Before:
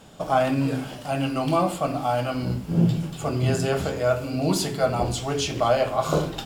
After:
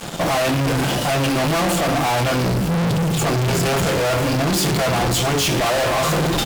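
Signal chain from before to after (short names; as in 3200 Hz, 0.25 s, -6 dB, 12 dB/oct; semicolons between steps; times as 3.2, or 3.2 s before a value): comb 5.8 ms, depth 38%; fuzz box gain 42 dB, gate -49 dBFS; gain -4.5 dB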